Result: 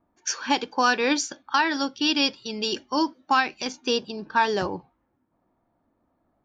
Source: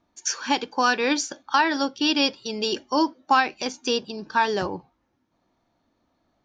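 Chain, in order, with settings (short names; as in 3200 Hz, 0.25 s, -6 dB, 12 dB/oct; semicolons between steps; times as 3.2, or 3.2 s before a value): low-pass opened by the level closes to 1400 Hz, open at -21 dBFS; 1.18–3.7 bell 580 Hz -4.5 dB 1.5 oct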